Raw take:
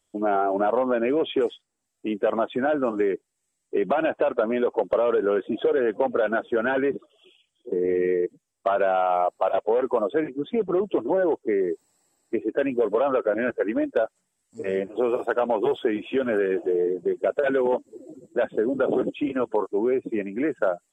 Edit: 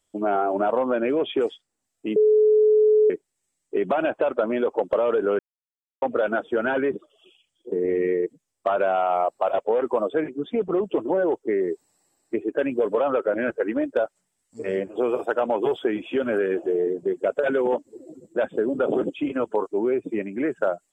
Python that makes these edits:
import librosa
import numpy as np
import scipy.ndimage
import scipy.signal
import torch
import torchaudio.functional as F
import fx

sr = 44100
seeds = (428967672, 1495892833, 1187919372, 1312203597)

y = fx.edit(x, sr, fx.bleep(start_s=2.16, length_s=0.94, hz=428.0, db=-13.5),
    fx.silence(start_s=5.39, length_s=0.63), tone=tone)